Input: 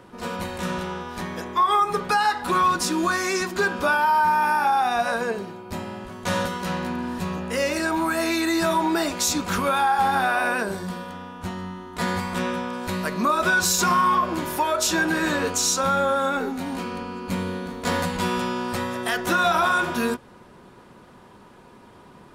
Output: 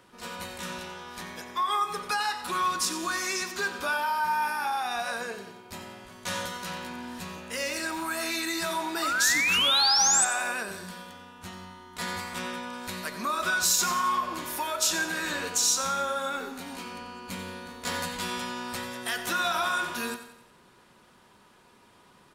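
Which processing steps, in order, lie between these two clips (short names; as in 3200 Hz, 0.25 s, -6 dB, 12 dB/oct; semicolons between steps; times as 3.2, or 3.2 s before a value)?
7.52–8.02 requantised 10-bit, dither none; 9.02–10.25 painted sound rise 1200–8400 Hz -21 dBFS; tilt shelf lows -6 dB, about 1400 Hz; feedback echo 90 ms, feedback 49%, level -12.5 dB; on a send at -16 dB: reverb RT60 0.35 s, pre-delay 75 ms; on the sum: gain -7 dB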